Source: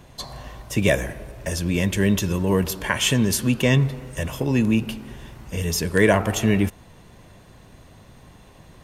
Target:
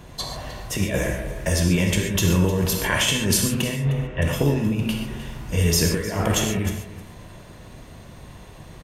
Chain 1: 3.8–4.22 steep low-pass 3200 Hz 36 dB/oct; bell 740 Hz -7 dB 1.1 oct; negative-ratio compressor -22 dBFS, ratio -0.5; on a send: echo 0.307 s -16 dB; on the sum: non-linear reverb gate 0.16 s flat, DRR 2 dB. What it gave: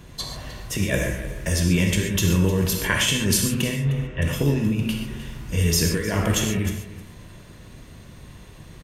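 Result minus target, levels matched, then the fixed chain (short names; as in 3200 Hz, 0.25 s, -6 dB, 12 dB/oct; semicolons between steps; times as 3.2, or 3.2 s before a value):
1000 Hz band -2.5 dB
3.8–4.22 steep low-pass 3200 Hz 36 dB/oct; negative-ratio compressor -22 dBFS, ratio -0.5; on a send: echo 0.307 s -16 dB; on the sum: non-linear reverb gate 0.16 s flat, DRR 2 dB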